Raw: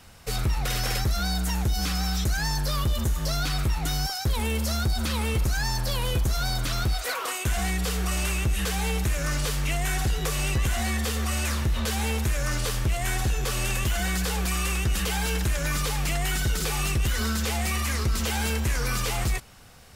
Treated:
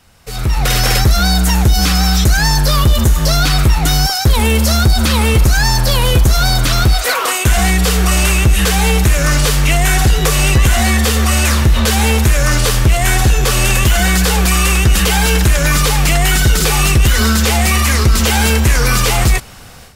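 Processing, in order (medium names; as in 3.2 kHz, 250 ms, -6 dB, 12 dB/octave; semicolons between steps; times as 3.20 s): level rider gain up to 15.5 dB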